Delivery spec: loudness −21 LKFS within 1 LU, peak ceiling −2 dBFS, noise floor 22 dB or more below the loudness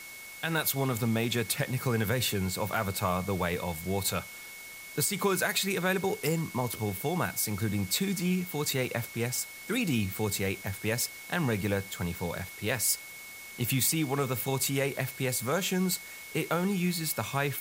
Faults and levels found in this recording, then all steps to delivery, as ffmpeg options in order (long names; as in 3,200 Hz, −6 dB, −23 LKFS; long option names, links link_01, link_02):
interfering tone 2,200 Hz; level of the tone −45 dBFS; background noise floor −45 dBFS; target noise floor −52 dBFS; integrated loudness −30.0 LKFS; sample peak −13.5 dBFS; target loudness −21.0 LKFS
→ -af "bandreject=frequency=2200:width=30"
-af "afftdn=noise_reduction=7:noise_floor=-45"
-af "volume=9dB"